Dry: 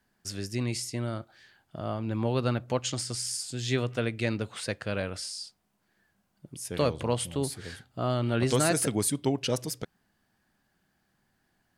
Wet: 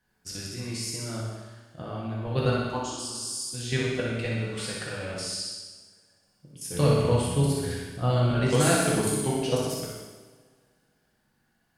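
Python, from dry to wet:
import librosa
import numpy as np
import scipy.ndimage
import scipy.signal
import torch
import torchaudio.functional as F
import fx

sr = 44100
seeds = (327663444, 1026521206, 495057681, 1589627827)

y = fx.low_shelf(x, sr, hz=140.0, db=10.0, at=(6.74, 8.31))
y = fx.level_steps(y, sr, step_db=13)
y = fx.fixed_phaser(y, sr, hz=550.0, stages=6, at=(2.66, 3.54))
y = fx.room_flutter(y, sr, wall_m=10.6, rt60_s=0.88)
y = fx.rev_double_slope(y, sr, seeds[0], early_s=1.0, late_s=2.6, knee_db=-21, drr_db=-3.0)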